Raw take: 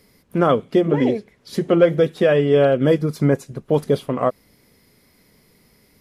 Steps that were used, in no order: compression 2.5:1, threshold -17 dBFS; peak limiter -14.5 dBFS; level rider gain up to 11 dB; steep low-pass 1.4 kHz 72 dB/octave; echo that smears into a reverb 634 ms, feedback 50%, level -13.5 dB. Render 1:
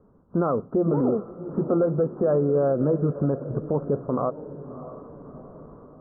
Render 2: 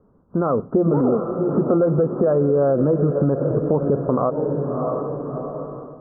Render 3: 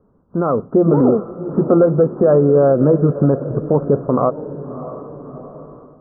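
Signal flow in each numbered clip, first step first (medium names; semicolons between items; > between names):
level rider > compression > steep low-pass > peak limiter > echo that smears into a reverb; echo that smears into a reverb > peak limiter > level rider > compression > steep low-pass; steep low-pass > compression > peak limiter > echo that smears into a reverb > level rider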